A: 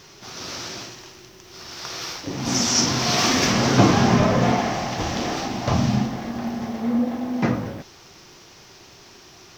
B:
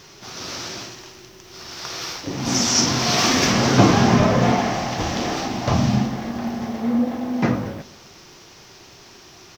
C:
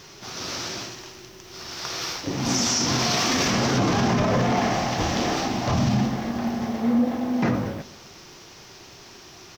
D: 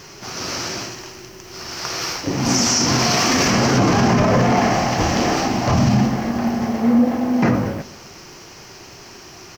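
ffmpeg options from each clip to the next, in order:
ffmpeg -i in.wav -filter_complex "[0:a]asplit=2[link_01][link_02];[link_02]adelay=121,lowpass=frequency=2000:poles=1,volume=-20.5dB,asplit=2[link_03][link_04];[link_04]adelay=121,lowpass=frequency=2000:poles=1,volume=0.54,asplit=2[link_05][link_06];[link_06]adelay=121,lowpass=frequency=2000:poles=1,volume=0.54,asplit=2[link_07][link_08];[link_08]adelay=121,lowpass=frequency=2000:poles=1,volume=0.54[link_09];[link_01][link_03][link_05][link_07][link_09]amix=inputs=5:normalize=0,volume=1.5dB" out.wav
ffmpeg -i in.wav -af "alimiter=limit=-13.5dB:level=0:latency=1:release=17" out.wav
ffmpeg -i in.wav -af "equalizer=frequency=3600:width_type=o:width=0.29:gain=-9,volume=6dB" out.wav

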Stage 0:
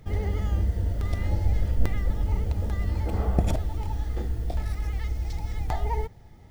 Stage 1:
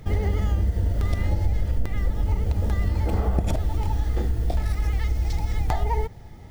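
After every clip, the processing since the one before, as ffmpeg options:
ffmpeg -i in.wav -af "acompressor=threshold=-25dB:ratio=6,volume=7dB" out.wav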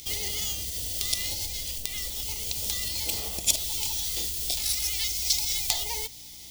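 ffmpeg -i in.wav -af "aeval=exprs='val(0)+0.0126*(sin(2*PI*60*n/s)+sin(2*PI*2*60*n/s)/2+sin(2*PI*3*60*n/s)/3+sin(2*PI*4*60*n/s)/4+sin(2*PI*5*60*n/s)/5)':channel_layout=same,aexciter=amount=14.3:drive=8.5:freq=2500,bass=frequency=250:gain=-9,treble=frequency=4000:gain=3,volume=-11.5dB" out.wav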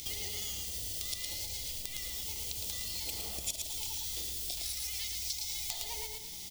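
ffmpeg -i in.wav -af "aecho=1:1:111|222|333|444:0.562|0.157|0.0441|0.0123,acompressor=threshold=-38dB:ratio=3" out.wav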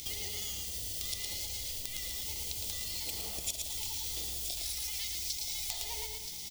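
ffmpeg -i in.wav -af "aecho=1:1:975:0.355" out.wav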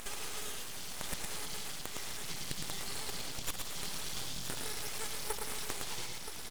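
ffmpeg -i in.wav -af "asubboost=boost=5.5:cutoff=170,highpass=110,lowpass=5800,aeval=exprs='abs(val(0))':channel_layout=same,volume=4.5dB" out.wav

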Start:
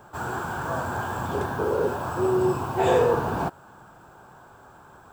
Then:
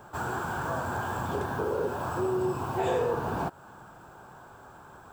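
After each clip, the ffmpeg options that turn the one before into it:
ffmpeg -i in.wav -af "acompressor=threshold=-30dB:ratio=2" out.wav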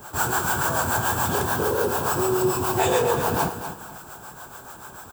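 ffmpeg -i in.wav -filter_complex "[0:a]crystalizer=i=4.5:c=0,acrossover=split=440[link_01][link_02];[link_01]aeval=exprs='val(0)*(1-0.7/2+0.7/2*cos(2*PI*6.9*n/s))':channel_layout=same[link_03];[link_02]aeval=exprs='val(0)*(1-0.7/2-0.7/2*cos(2*PI*6.9*n/s))':channel_layout=same[link_04];[link_03][link_04]amix=inputs=2:normalize=0,asplit=2[link_05][link_06];[link_06]aecho=0:1:244|488|732:0.316|0.0791|0.0198[link_07];[link_05][link_07]amix=inputs=2:normalize=0,volume=8.5dB" out.wav

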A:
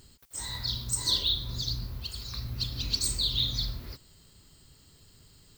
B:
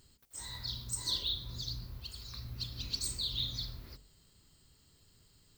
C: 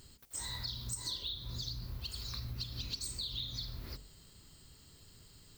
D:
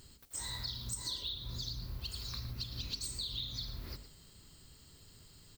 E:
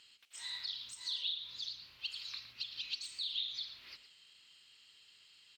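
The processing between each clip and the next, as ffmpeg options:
ffmpeg -i in.wav -af "bandreject=frequency=47.36:width_type=h:width=4,bandreject=frequency=94.72:width_type=h:width=4,bandreject=frequency=142.08:width_type=h:width=4,bandreject=frequency=189.44:width_type=h:width=4,bandreject=frequency=236.8:width_type=h:width=4,bandreject=frequency=284.16:width_type=h:width=4,bandreject=frequency=331.52:width_type=h:width=4,bandreject=frequency=378.88:width_type=h:width=4,bandreject=frequency=426.24:width_type=h:width=4,bandreject=frequency=473.6:width_type=h:width=4,bandreject=frequency=520.96:width_type=h:width=4,bandreject=frequency=568.32:width_type=h:width=4,bandreject=frequency=615.68:width_type=h:width=4,bandreject=frequency=663.04:width_type=h:width=4,bandreject=frequency=710.4:width_type=h:width=4,bandreject=frequency=757.76:width_type=h:width=4,bandreject=frequency=805.12:width_type=h:width=4,bandreject=frequency=852.48:width_type=h:width=4,volume=-7.5dB" out.wav
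ffmpeg -i in.wav -af "acompressor=threshold=-44dB:ratio=6,volume=6.5dB" out.wav
ffmpeg -i in.wav -af "aecho=1:1:114:0.224" out.wav
ffmpeg -i in.wav -af "bandpass=frequency=2800:width_type=q:width=3:csg=0,volume=8.5dB" out.wav

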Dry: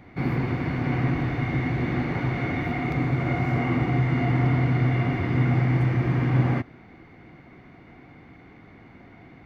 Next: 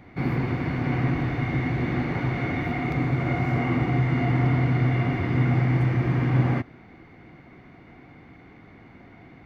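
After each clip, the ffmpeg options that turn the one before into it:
ffmpeg -i in.wav -af anull out.wav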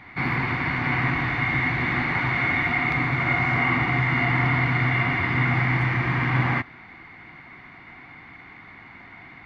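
ffmpeg -i in.wav -af "equalizer=frequency=500:width_type=o:width=1:gain=-5,equalizer=frequency=1000:width_type=o:width=1:gain=10,equalizer=frequency=2000:width_type=o:width=1:gain=11,equalizer=frequency=4000:width_type=o:width=1:gain=8,volume=-2.5dB" out.wav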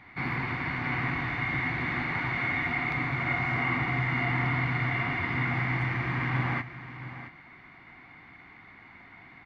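ffmpeg -i in.wav -af "aecho=1:1:669:0.224,volume=-6.5dB" out.wav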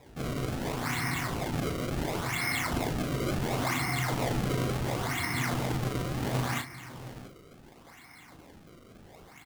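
ffmpeg -i in.wav -filter_complex "[0:a]acrusher=samples=29:mix=1:aa=0.000001:lfo=1:lforange=46.4:lforate=0.71,asplit=2[link_01][link_02];[link_02]adelay=37,volume=-7dB[link_03];[link_01][link_03]amix=inputs=2:normalize=0,volume=-2dB" out.wav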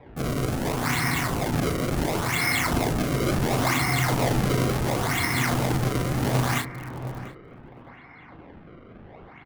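ffmpeg -i in.wav -filter_complex "[0:a]acrossover=split=500|2800[link_01][link_02][link_03];[link_03]acrusher=bits=6:mix=0:aa=0.000001[link_04];[link_01][link_02][link_04]amix=inputs=3:normalize=0,asplit=2[link_05][link_06];[link_06]adelay=699.7,volume=-15dB,highshelf=frequency=4000:gain=-15.7[link_07];[link_05][link_07]amix=inputs=2:normalize=0,volume=6.5dB" out.wav

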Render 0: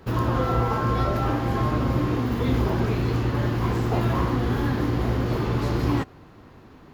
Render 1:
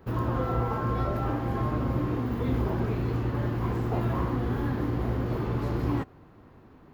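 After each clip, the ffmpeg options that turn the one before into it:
ffmpeg -i in.wav -af "equalizer=frequency=5600:width=0.47:gain=-8.5,volume=-4.5dB" out.wav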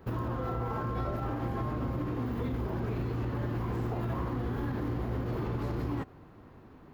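ffmpeg -i in.wav -af "alimiter=level_in=1dB:limit=-24dB:level=0:latency=1:release=78,volume=-1dB" out.wav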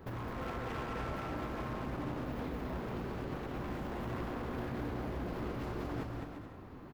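ffmpeg -i in.wav -filter_complex "[0:a]acompressor=threshold=-35dB:ratio=6,aeval=exprs='0.0158*(abs(mod(val(0)/0.0158+3,4)-2)-1)':channel_layout=same,asplit=2[link_01][link_02];[link_02]aecho=0:1:210|346.5|435.2|492.9|530.4:0.631|0.398|0.251|0.158|0.1[link_03];[link_01][link_03]amix=inputs=2:normalize=0,volume=1dB" out.wav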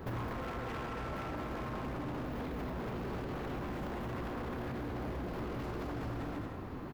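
ffmpeg -i in.wav -af "alimiter=level_in=15dB:limit=-24dB:level=0:latency=1:release=12,volume=-15dB,volume=7dB" out.wav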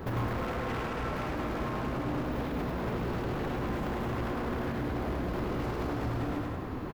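ffmpeg -i in.wav -af "aecho=1:1:102:0.531,volume=5dB" out.wav

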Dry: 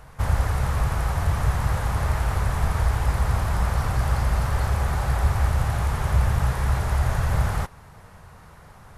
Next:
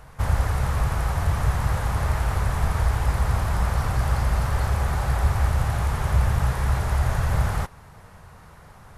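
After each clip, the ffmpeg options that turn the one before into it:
ffmpeg -i in.wav -af anull out.wav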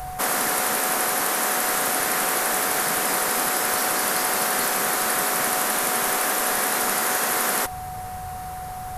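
ffmpeg -i in.wav -af "afftfilt=real='re*lt(hypot(re,im),0.1)':imag='im*lt(hypot(re,im),0.1)':win_size=1024:overlap=0.75,aeval=exprs='val(0)+0.01*sin(2*PI*740*n/s)':channel_layout=same,aemphasis=mode=production:type=50fm,volume=8.5dB" out.wav

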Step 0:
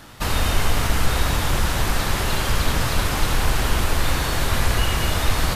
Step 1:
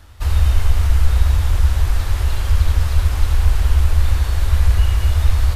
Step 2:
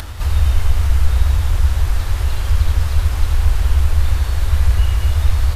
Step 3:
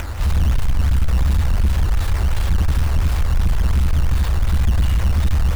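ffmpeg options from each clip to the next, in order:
ffmpeg -i in.wav -af "lowshelf=frequency=110:width_type=q:width=3:gain=12,volume=-7.5dB" out.wav
ffmpeg -i in.wav -af "acompressor=mode=upward:threshold=-16dB:ratio=2.5" out.wav
ffmpeg -i in.wav -af "acrusher=samples=9:mix=1:aa=0.000001:lfo=1:lforange=14.4:lforate=2.8,asoftclip=type=tanh:threshold=-14.5dB,volume=3dB" out.wav

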